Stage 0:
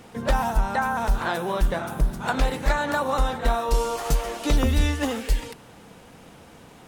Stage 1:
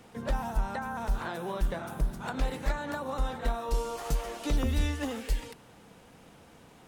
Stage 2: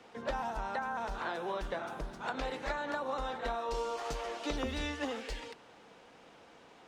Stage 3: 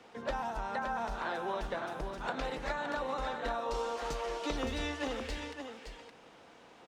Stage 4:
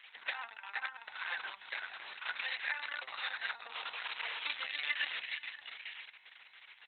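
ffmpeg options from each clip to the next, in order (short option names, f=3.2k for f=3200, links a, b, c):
-filter_complex "[0:a]acrossover=split=430[a][b];[b]acompressor=threshold=-27dB:ratio=6[c];[a][c]amix=inputs=2:normalize=0,volume=-7dB"
-filter_complex "[0:a]acrossover=split=290 6600:gain=0.2 1 0.1[a][b][c];[a][b][c]amix=inputs=3:normalize=0"
-af "aecho=1:1:567:0.422"
-af "highpass=f=2.1k:t=q:w=2.1,volume=3.5dB" -ar 48000 -c:a libopus -b:a 6k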